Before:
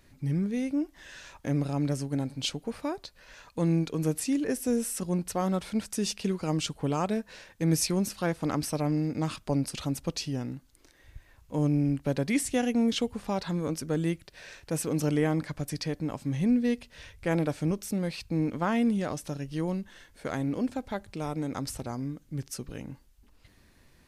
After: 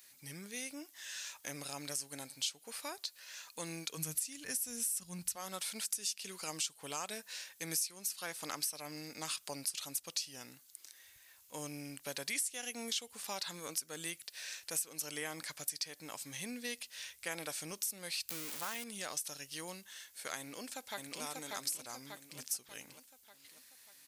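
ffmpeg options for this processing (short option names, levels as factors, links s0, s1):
-filter_complex "[0:a]asplit=3[s0][s1][s2];[s0]afade=t=out:st=3.96:d=0.02[s3];[s1]asubboost=boost=11.5:cutoff=130,afade=t=in:st=3.96:d=0.02,afade=t=out:st=5.35:d=0.02[s4];[s2]afade=t=in:st=5.35:d=0.02[s5];[s3][s4][s5]amix=inputs=3:normalize=0,asettb=1/sr,asplit=3[s6][s7][s8];[s6]atrim=end=18.294[s9];[s7]atrim=start=18.29:end=18.84,asetpts=PTS-STARTPTS,afade=t=in:d=0.004:c=qsin,afade=t=out:st=0.546:d=0.004:c=qsin,aeval=exprs='val(0)+0.5*0.0299*sgn(val(0))':c=same[s10];[s8]atrim=start=18.836[s11];[s9][s10]acrossfade=d=0.004:c1=hsin:c2=qsin[s12];[s12][s11]acrossfade=d=0.004:c1=qsin:c2=hsin,asplit=2[s13][s14];[s14]afade=t=in:st=20.38:d=0.01,afade=t=out:st=21.22:d=0.01,aecho=0:1:590|1180|1770|2360|2950|3540|4130:0.794328|0.397164|0.198582|0.099291|0.0496455|0.0248228|0.0124114[s15];[s13][s15]amix=inputs=2:normalize=0,aderivative,acompressor=threshold=0.00562:ratio=5,equalizer=f=280:t=o:w=0.77:g=-2.5,volume=3.16"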